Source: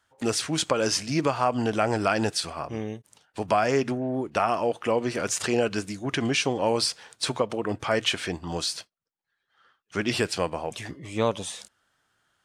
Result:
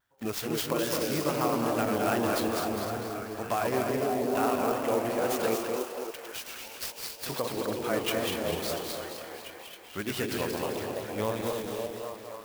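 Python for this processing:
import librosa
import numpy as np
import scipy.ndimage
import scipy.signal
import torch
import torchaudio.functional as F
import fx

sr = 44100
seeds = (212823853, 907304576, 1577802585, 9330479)

p1 = fx.reverse_delay_fb(x, sr, ms=124, feedback_pct=72, wet_db=-4.5)
p2 = fx.differentiator(p1, sr, at=(5.55, 7.26))
p3 = p2 + fx.echo_stepped(p2, sr, ms=276, hz=350.0, octaves=0.7, feedback_pct=70, wet_db=-0.5, dry=0)
p4 = fx.wow_flutter(p3, sr, seeds[0], rate_hz=2.1, depth_cents=95.0)
p5 = p4 + 10.0 ** (-6.5 / 20.0) * np.pad(p4, (int(210 * sr / 1000.0), 0))[:len(p4)]
p6 = fx.clock_jitter(p5, sr, seeds[1], jitter_ms=0.035)
y = F.gain(torch.from_numpy(p6), -7.5).numpy()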